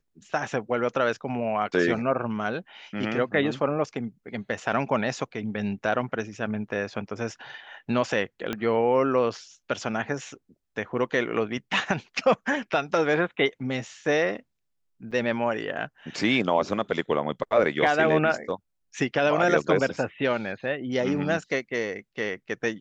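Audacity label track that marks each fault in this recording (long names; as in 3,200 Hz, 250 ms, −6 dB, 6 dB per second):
8.530000	8.530000	click −14 dBFS
15.110000	15.120000	drop-out 6.5 ms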